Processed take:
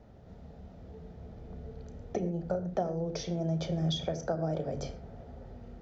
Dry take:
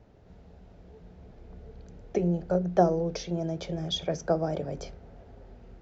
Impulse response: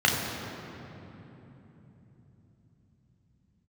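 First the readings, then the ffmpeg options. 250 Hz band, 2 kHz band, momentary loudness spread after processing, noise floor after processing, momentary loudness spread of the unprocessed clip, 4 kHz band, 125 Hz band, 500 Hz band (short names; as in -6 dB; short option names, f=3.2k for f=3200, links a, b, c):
-4.0 dB, -4.5 dB, 18 LU, -52 dBFS, 19 LU, -4.0 dB, -1.5 dB, -5.5 dB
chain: -filter_complex "[0:a]acompressor=threshold=-32dB:ratio=4,asplit=2[a][b];[1:a]atrim=start_sample=2205,atrim=end_sample=6174,lowshelf=f=410:g=9[c];[b][c]afir=irnorm=-1:irlink=0,volume=-22.5dB[d];[a][d]amix=inputs=2:normalize=0"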